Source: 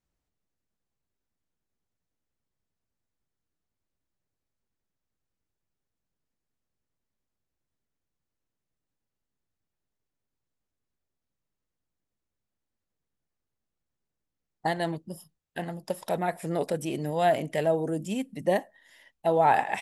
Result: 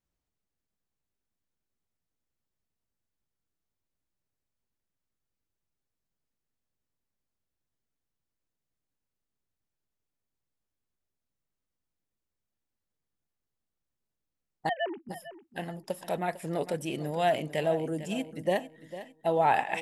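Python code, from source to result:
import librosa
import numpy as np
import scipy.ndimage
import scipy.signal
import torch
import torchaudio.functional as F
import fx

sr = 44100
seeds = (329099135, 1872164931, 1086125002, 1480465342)

p1 = fx.sine_speech(x, sr, at=(14.69, 15.09))
p2 = fx.dynamic_eq(p1, sr, hz=2800.0, q=2.3, threshold_db=-49.0, ratio=4.0, max_db=6)
p3 = p2 + fx.echo_feedback(p2, sr, ms=451, feedback_pct=32, wet_db=-14, dry=0)
y = p3 * librosa.db_to_amplitude(-3.0)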